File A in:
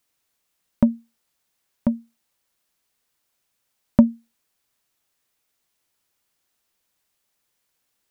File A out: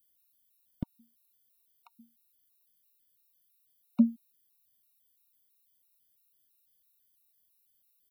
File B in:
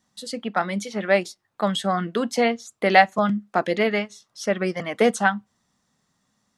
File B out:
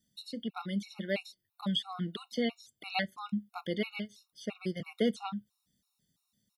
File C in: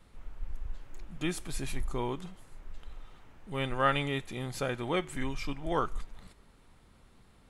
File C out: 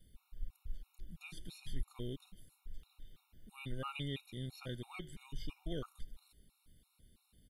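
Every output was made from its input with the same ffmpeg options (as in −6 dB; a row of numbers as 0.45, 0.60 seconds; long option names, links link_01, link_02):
-filter_complex "[0:a]firequalizer=gain_entry='entry(120,0);entry(750,-15);entry(1100,-13);entry(1700,-12);entry(3400,2);entry(6700,-4);entry(12000,13)':delay=0.05:min_phase=1,acrossover=split=5100[link_01][link_02];[link_02]acompressor=threshold=-57dB:ratio=4:attack=1:release=60[link_03];[link_01][link_03]amix=inputs=2:normalize=0,afftfilt=real='re*gt(sin(2*PI*3*pts/sr)*(1-2*mod(floor(b*sr/1024/730),2)),0)':imag='im*gt(sin(2*PI*3*pts/sr)*(1-2*mod(floor(b*sr/1024/730),2)),0)':win_size=1024:overlap=0.75,volume=-3.5dB"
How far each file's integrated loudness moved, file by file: −9.0, −13.5, −12.5 LU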